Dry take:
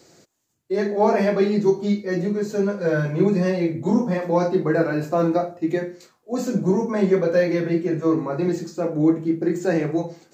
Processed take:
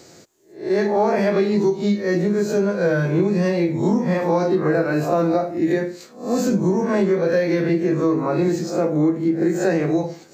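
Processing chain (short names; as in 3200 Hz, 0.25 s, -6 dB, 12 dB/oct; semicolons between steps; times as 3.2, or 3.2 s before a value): spectral swells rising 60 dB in 0.41 s; compressor, threshold -20 dBFS, peak gain reduction 8.5 dB; gain +5 dB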